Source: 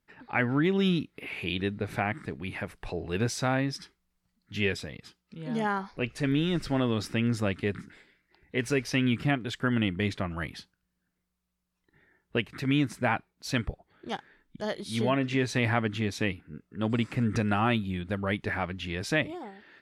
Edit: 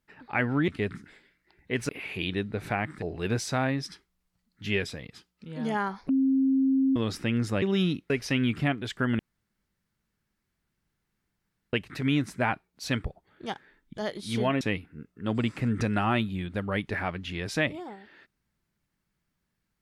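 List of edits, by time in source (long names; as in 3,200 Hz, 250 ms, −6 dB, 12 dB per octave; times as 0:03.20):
0:00.68–0:01.16: swap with 0:07.52–0:08.73
0:02.29–0:02.92: remove
0:05.99–0:06.86: beep over 267 Hz −20 dBFS
0:09.82–0:12.36: fill with room tone
0:15.24–0:16.16: remove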